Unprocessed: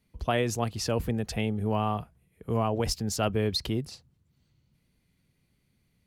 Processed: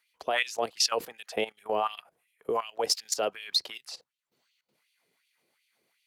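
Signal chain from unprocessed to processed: LFO high-pass sine 2.7 Hz 410–3000 Hz; level quantiser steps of 16 dB; dynamic EQ 4700 Hz, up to +5 dB, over -50 dBFS, Q 1.1; gain +5 dB

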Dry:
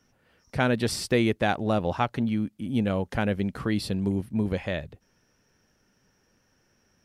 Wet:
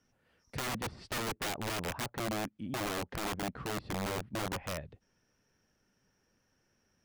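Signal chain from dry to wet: treble ducked by the level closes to 1300 Hz, closed at -23.5 dBFS; wrapped overs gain 22.5 dB; gain -7.5 dB

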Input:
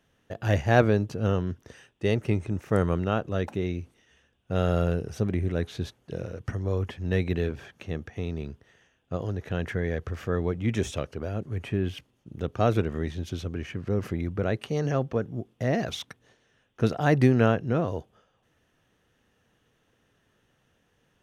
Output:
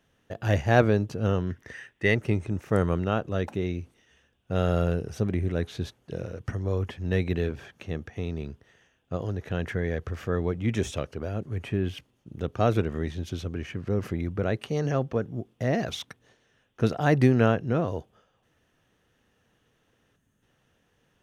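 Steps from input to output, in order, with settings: 1.5–2.15 bell 1900 Hz +14.5 dB 0.57 oct; 20.16–20.43 spectral gain 310–6100 Hz -9 dB

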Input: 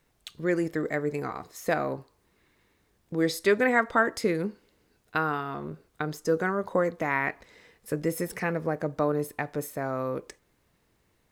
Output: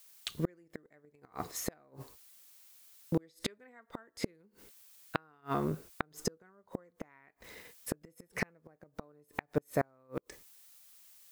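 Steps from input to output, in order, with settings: gate -54 dBFS, range -28 dB; added noise blue -63 dBFS; flipped gate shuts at -21 dBFS, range -38 dB; gain +4 dB

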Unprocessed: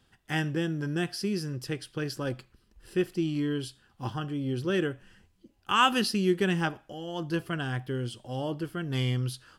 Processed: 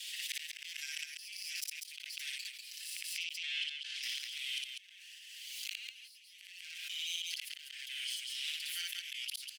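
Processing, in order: minimum comb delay 5.7 ms; steep high-pass 2200 Hz 48 dB/oct; 7.91–8.48 compressor, threshold -49 dBFS, peak gain reduction 8 dB; flipped gate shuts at -35 dBFS, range -36 dB; 3.18–4.03 air absorption 88 m; loudspeakers at several distances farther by 20 m -1 dB, 67 m -5 dB; backwards sustainer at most 27 dB/s; gain +9.5 dB

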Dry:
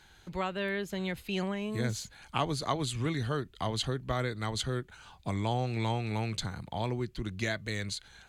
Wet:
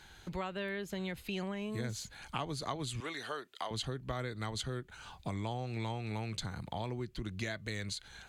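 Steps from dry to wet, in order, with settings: 3–3.71 HPF 550 Hz 12 dB/oct; compressor 2.5:1, threshold -41 dBFS, peak gain reduction 11.5 dB; gain +2.5 dB

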